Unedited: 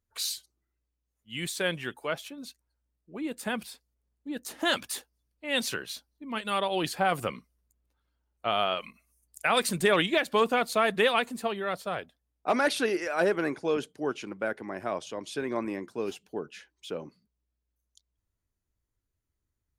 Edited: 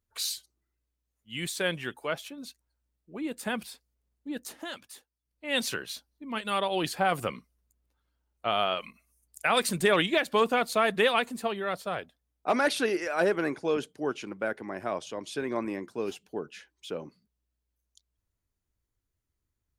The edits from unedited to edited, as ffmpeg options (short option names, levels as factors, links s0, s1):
-filter_complex "[0:a]asplit=3[s0][s1][s2];[s0]atrim=end=4.67,asetpts=PTS-STARTPTS,afade=t=out:st=4.33:d=0.34:c=qsin:silence=0.223872[s3];[s1]atrim=start=4.67:end=5.22,asetpts=PTS-STARTPTS,volume=0.224[s4];[s2]atrim=start=5.22,asetpts=PTS-STARTPTS,afade=t=in:d=0.34:c=qsin:silence=0.223872[s5];[s3][s4][s5]concat=n=3:v=0:a=1"